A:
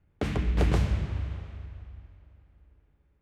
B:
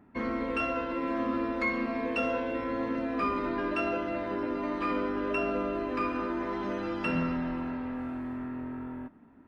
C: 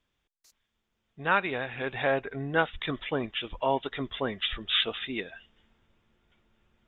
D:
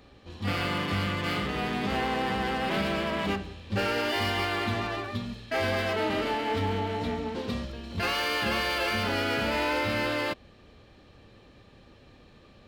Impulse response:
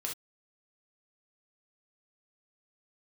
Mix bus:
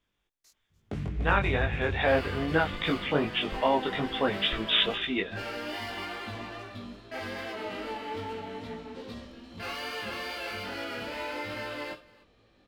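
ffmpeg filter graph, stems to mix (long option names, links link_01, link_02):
-filter_complex "[0:a]equalizer=frequency=130:width=0.6:gain=9,acompressor=threshold=-28dB:ratio=2,adelay=700,volume=-7.5dB,asplit=2[link_01][link_02];[link_02]volume=-7.5dB[link_03];[1:a]asoftclip=type=tanh:threshold=-34.5dB,adelay=1250,volume=-16.5dB[link_04];[2:a]alimiter=limit=-16.5dB:level=0:latency=1:release=148,volume=2dB,asplit=2[link_05][link_06];[link_06]volume=-22dB[link_07];[3:a]equalizer=frequency=77:width_type=o:width=1.8:gain=-5,adelay=1600,volume=-13dB,asplit=3[link_08][link_09][link_10];[link_09]volume=-5.5dB[link_11];[link_10]volume=-18dB[link_12];[4:a]atrim=start_sample=2205[link_13];[link_11][link_13]afir=irnorm=-1:irlink=0[link_14];[link_03][link_07][link_12]amix=inputs=3:normalize=0,aecho=0:1:293:1[link_15];[link_01][link_04][link_05][link_08][link_14][link_15]amix=inputs=6:normalize=0,dynaudnorm=framelen=110:gausssize=13:maxgain=4.5dB,flanger=delay=18:depth=2.8:speed=2.4"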